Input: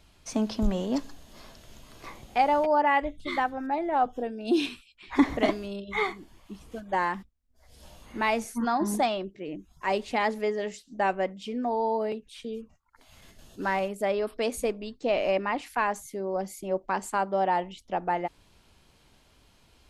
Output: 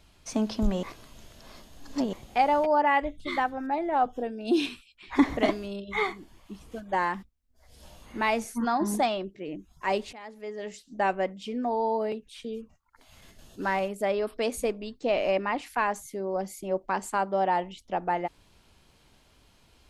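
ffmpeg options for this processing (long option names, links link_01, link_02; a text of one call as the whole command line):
ffmpeg -i in.wav -filter_complex "[0:a]asplit=4[link_01][link_02][link_03][link_04];[link_01]atrim=end=0.832[link_05];[link_02]atrim=start=0.828:end=2.132,asetpts=PTS-STARTPTS,areverse[link_06];[link_03]atrim=start=2.128:end=10.13,asetpts=PTS-STARTPTS,afade=type=out:start_time=7.998:duration=0.004:curve=hsin:silence=0.112202[link_07];[link_04]atrim=start=10.13,asetpts=PTS-STARTPTS,afade=type=in:duration=0.7:curve=qua:silence=0.112202[link_08];[link_05][link_06]acrossfade=duration=0.004:curve1=hsin:curve2=hsin[link_09];[link_07][link_08]concat=n=2:v=0:a=1[link_10];[link_09][link_10]acrossfade=duration=0.004:curve1=hsin:curve2=hsin" out.wav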